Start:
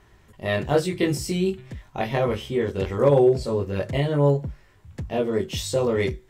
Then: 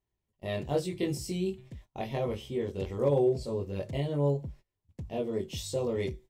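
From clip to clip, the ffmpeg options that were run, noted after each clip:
ffmpeg -i in.wav -af "agate=range=-22dB:threshold=-41dB:ratio=16:detection=peak,equalizer=frequency=1500:width=1.6:gain=-10.5,volume=-8dB" out.wav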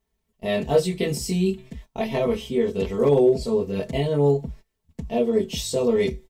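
ffmpeg -i in.wav -af "aecho=1:1:4.5:0.82,volume=7.5dB" out.wav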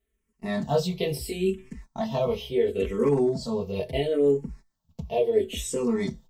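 ffmpeg -i in.wav -filter_complex "[0:a]asplit=2[link_01][link_02];[link_02]afreqshift=-0.73[link_03];[link_01][link_03]amix=inputs=2:normalize=1" out.wav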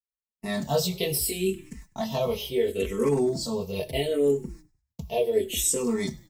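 ffmpeg -i in.wav -filter_complex "[0:a]agate=range=-33dB:threshold=-42dB:ratio=3:detection=peak,aemphasis=mode=production:type=75kf,asplit=4[link_01][link_02][link_03][link_04];[link_02]adelay=100,afreqshift=-37,volume=-22dB[link_05];[link_03]adelay=200,afreqshift=-74,volume=-29.7dB[link_06];[link_04]adelay=300,afreqshift=-111,volume=-37.5dB[link_07];[link_01][link_05][link_06][link_07]amix=inputs=4:normalize=0,volume=-1.5dB" out.wav

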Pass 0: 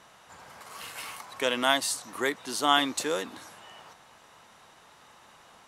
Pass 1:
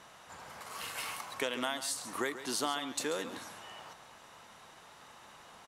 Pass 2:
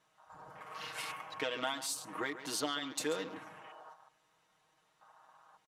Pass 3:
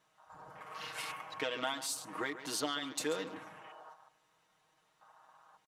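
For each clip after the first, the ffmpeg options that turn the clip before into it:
ffmpeg -i in.wav -af "acompressor=threshold=-30dB:ratio=16,aecho=1:1:138:0.237" out.wav
ffmpeg -i in.wav -af "afwtdn=0.00398,aecho=1:1:6.4:0.8,volume=-3.5dB" out.wav
ffmpeg -i in.wav -filter_complex "[0:a]asplit=2[link_01][link_02];[link_02]adelay=291.5,volume=-27dB,highshelf=frequency=4000:gain=-6.56[link_03];[link_01][link_03]amix=inputs=2:normalize=0" out.wav

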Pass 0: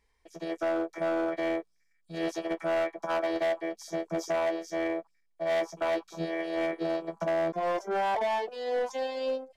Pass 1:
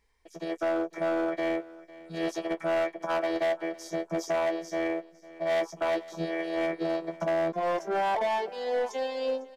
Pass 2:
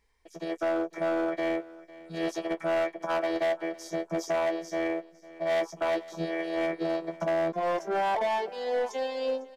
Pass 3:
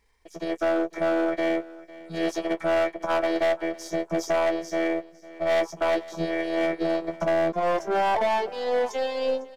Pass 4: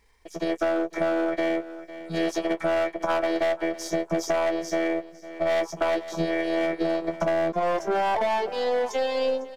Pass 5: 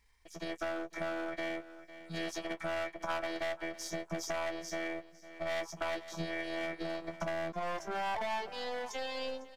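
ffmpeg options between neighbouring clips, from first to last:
ffmpeg -i in.wav -af "aecho=1:1:503|1006|1509:0.106|0.0339|0.0108,volume=1dB" out.wav
ffmpeg -i in.wav -af anull out.wav
ffmpeg -i in.wav -af "aeval=exprs='if(lt(val(0),0),0.708*val(0),val(0))':channel_layout=same,volume=5.5dB" out.wav
ffmpeg -i in.wav -af "acompressor=threshold=-26dB:ratio=6,volume=4.5dB" out.wav
ffmpeg -i in.wav -af "equalizer=frequency=440:width=0.8:gain=-10.5,volume=-6dB" out.wav

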